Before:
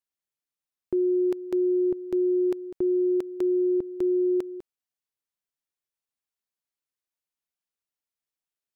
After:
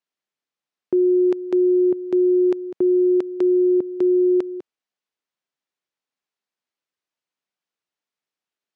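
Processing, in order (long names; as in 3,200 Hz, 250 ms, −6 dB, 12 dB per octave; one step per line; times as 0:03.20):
high-pass filter 170 Hz
high-frequency loss of the air 99 metres
level +7 dB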